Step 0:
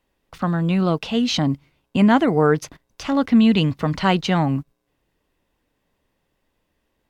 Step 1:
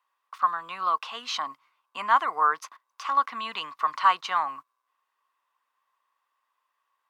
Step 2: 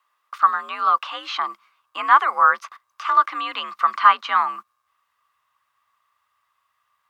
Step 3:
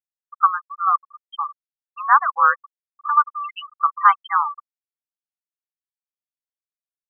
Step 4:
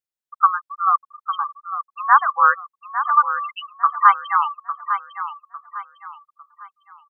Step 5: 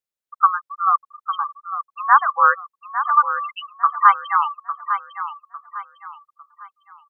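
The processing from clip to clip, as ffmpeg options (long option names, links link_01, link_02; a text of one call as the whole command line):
ffmpeg -i in.wav -af "highpass=frequency=1100:width_type=q:width=8.6,volume=-8.5dB" out.wav
ffmpeg -i in.wav -filter_complex "[0:a]afreqshift=66,acrossover=split=3400[link_01][link_02];[link_02]acompressor=threshold=-54dB:ratio=4:attack=1:release=60[link_03];[link_01][link_03]amix=inputs=2:normalize=0,asubboost=boost=9:cutoff=120,volume=7.5dB" out.wav
ffmpeg -i in.wav -af "afftfilt=real='re*gte(hypot(re,im),0.224)':imag='im*gte(hypot(re,im),0.224)':win_size=1024:overlap=0.75" out.wav
ffmpeg -i in.wav -af "aecho=1:1:853|1706|2559|3412:0.316|0.108|0.0366|0.0124,volume=1dB" out.wav
ffmpeg -i in.wav -af "equalizer=frequency=520:width_type=o:width=0.31:gain=5" out.wav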